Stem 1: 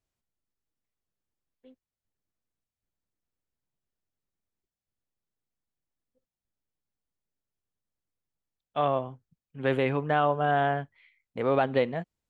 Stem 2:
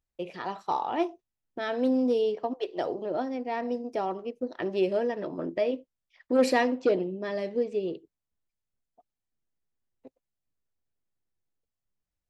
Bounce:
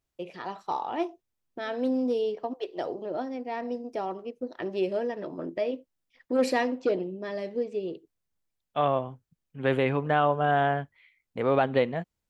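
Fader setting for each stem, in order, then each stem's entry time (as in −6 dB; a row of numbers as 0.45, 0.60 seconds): +1.0, −2.0 decibels; 0.00, 0.00 seconds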